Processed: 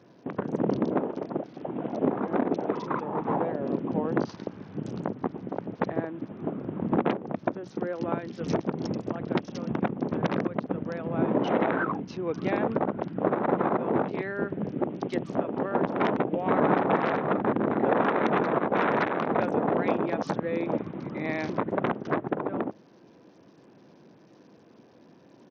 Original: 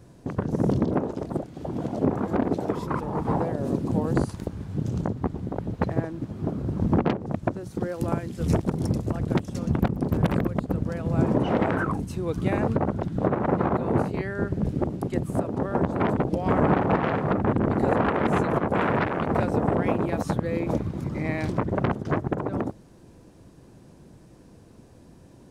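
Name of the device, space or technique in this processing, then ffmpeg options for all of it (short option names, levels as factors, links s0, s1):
Bluetooth headset: -filter_complex "[0:a]highpass=f=150:p=1,asettb=1/sr,asplit=3[s0][s1][s2];[s0]atrim=end=14.894[s3];[s1]atrim=start=14.89:end=16.26,asetpts=PTS-STARTPTS,afade=t=in:d=0.004:c=qsin,afade=t=out:st=1.366:d=0.004:c=qsin,equalizer=f=3900:t=o:w=1.5:g=5.5[s4];[s2]atrim=start=16.256[s5];[s3][s4]acrossfade=d=0.004:c1=hsin:c2=qsin[s6];[s6][s5]acrossfade=d=0.004:c1=qsin:c2=hsin,highpass=190,aresample=16000,aresample=44100" -ar 48000 -c:a sbc -b:a 64k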